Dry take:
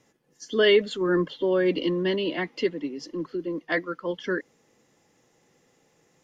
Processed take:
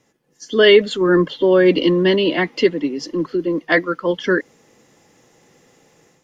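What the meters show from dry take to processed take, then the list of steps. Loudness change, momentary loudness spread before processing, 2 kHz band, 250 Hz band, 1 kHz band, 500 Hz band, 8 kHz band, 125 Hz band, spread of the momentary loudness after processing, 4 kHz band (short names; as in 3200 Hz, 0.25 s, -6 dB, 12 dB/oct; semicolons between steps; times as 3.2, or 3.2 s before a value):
+9.5 dB, 12 LU, +9.5 dB, +9.5 dB, +9.5 dB, +9.0 dB, n/a, +9.5 dB, 11 LU, +9.0 dB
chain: AGC gain up to 8.5 dB; gain +2 dB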